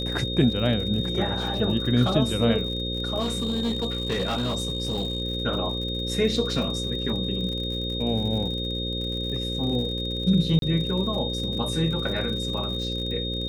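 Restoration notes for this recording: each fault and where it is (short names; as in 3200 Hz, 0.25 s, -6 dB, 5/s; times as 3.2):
buzz 60 Hz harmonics 9 -31 dBFS
crackle 72/s -33 dBFS
tone 3700 Hz -30 dBFS
3.19–5.22 clipped -21.5 dBFS
10.59–10.62 gap 32 ms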